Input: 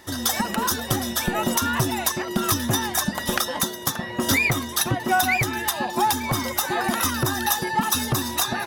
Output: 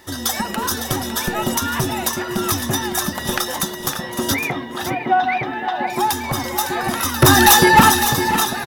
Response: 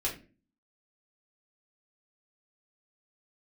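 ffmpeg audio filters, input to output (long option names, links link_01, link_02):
-filter_complex "[0:a]asplit=3[link_01][link_02][link_03];[link_01]afade=type=out:start_time=4.33:duration=0.02[link_04];[link_02]highpass=180,equalizer=frequency=760:width_type=q:width=4:gain=5,equalizer=frequency=1200:width_type=q:width=4:gain=-4,equalizer=frequency=2400:width_type=q:width=4:gain=-5,lowpass=frequency=3100:width=0.5412,lowpass=frequency=3100:width=1.3066,afade=type=in:start_time=4.33:duration=0.02,afade=type=out:start_time=5.86:duration=0.02[link_05];[link_03]afade=type=in:start_time=5.86:duration=0.02[link_06];[link_04][link_05][link_06]amix=inputs=3:normalize=0,asettb=1/sr,asplit=3[link_07][link_08][link_09];[link_07]atrim=end=7.224[link_10];[link_08]atrim=start=7.22:end=7.92,asetpts=PTS-STARTPTS,afade=type=in:duration=0.004:curve=qsin,afade=type=out:start_time=0.696:duration=0.004:curve=qsin,aeval=exprs='0.501*sin(PI/2*3.16*val(0)/0.501)':channel_layout=same[link_11];[link_09]atrim=start=7.916[link_12];[link_10][link_11]acrossfade=duration=0.004:curve1=hsin:curve2=qsin[link_13];[link_13][link_12]acrossfade=duration=0.004:curve1=qsin:curve2=hsin,asplit=2[link_14][link_15];[1:a]atrim=start_sample=2205[link_16];[link_15][link_16]afir=irnorm=-1:irlink=0,volume=-15dB[link_17];[link_14][link_17]amix=inputs=2:normalize=0,acrusher=bits=9:mix=0:aa=0.000001,aecho=1:1:512|557:0.158|0.335"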